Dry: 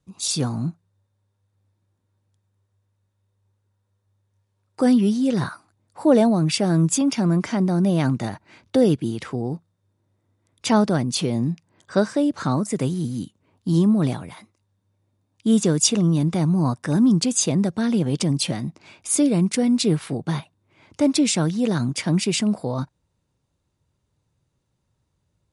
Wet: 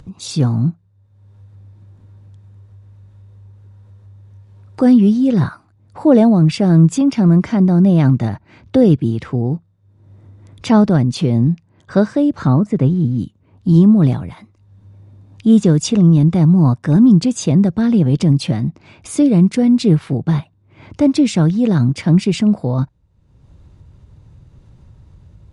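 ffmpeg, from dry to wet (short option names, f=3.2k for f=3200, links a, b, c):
-filter_complex "[0:a]asettb=1/sr,asplit=3[a][b][c];[a]atrim=end=12.474[d];[b]atrim=start=12.47:end=13.19,asetpts=PTS-STARTPTS,afade=t=in:d=0.004:c=qsin,afade=t=out:st=0.716:d=0.004:c=qsin,aemphasis=mode=reproduction:type=75fm[e];[c]atrim=start=13.186[f];[d][e]acrossfade=d=0.004:c1=hsin:c2=qsin[g];[g][f]acrossfade=d=0.004:c1=qsin:c2=hsin,aemphasis=mode=reproduction:type=bsi,acompressor=mode=upward:threshold=-31dB:ratio=2.5,volume=2.5dB"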